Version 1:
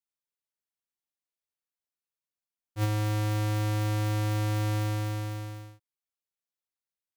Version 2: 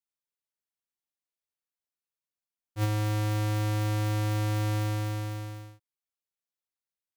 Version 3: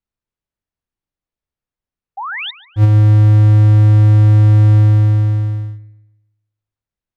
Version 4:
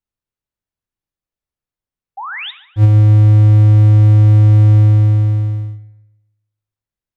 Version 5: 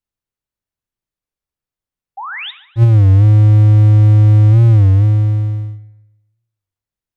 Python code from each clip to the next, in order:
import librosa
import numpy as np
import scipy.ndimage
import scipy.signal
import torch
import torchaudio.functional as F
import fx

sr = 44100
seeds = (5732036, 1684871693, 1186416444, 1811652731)

y1 = x
y2 = fx.riaa(y1, sr, side='playback')
y2 = fx.spec_paint(y2, sr, seeds[0], shape='rise', start_s=2.17, length_s=0.34, low_hz=740.0, high_hz=3900.0, level_db=-30.0)
y2 = fx.echo_wet_lowpass(y2, sr, ms=142, feedback_pct=37, hz=2800.0, wet_db=-15)
y2 = y2 * librosa.db_to_amplitude(6.0)
y3 = fx.rev_fdn(y2, sr, rt60_s=0.72, lf_ratio=0.95, hf_ratio=0.85, size_ms=54.0, drr_db=12.5)
y3 = y3 * librosa.db_to_amplitude(-2.0)
y4 = fx.record_warp(y3, sr, rpm=33.33, depth_cents=160.0)